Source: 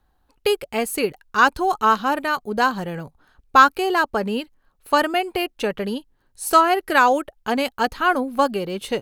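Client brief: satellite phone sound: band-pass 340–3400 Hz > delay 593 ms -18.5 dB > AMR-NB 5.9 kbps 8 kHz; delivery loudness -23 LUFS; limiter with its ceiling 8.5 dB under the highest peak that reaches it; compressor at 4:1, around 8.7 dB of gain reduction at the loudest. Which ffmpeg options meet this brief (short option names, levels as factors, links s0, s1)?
-af "acompressor=threshold=0.126:ratio=4,alimiter=limit=0.168:level=0:latency=1,highpass=340,lowpass=3400,aecho=1:1:593:0.119,volume=1.88" -ar 8000 -c:a libopencore_amrnb -b:a 5900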